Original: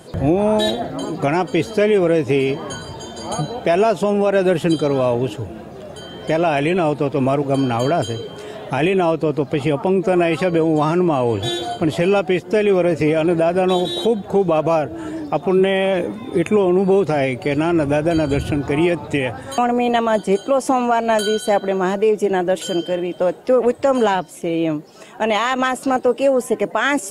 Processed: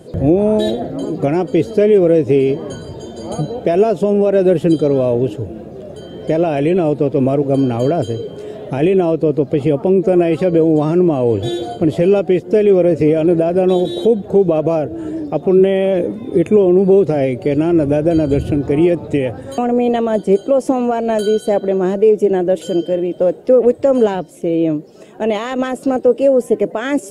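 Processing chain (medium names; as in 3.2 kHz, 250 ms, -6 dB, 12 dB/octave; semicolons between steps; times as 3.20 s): resonant low shelf 690 Hz +8.5 dB, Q 1.5; trim -5.5 dB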